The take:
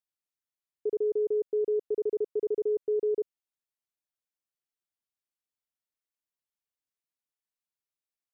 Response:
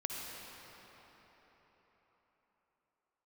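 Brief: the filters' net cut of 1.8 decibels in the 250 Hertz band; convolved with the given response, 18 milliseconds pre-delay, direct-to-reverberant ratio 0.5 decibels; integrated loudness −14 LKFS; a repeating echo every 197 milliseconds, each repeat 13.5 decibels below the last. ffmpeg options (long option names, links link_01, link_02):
-filter_complex "[0:a]equalizer=frequency=250:width_type=o:gain=-4.5,aecho=1:1:197|394:0.211|0.0444,asplit=2[link_01][link_02];[1:a]atrim=start_sample=2205,adelay=18[link_03];[link_02][link_03]afir=irnorm=-1:irlink=0,volume=-2.5dB[link_04];[link_01][link_04]amix=inputs=2:normalize=0,volume=16.5dB"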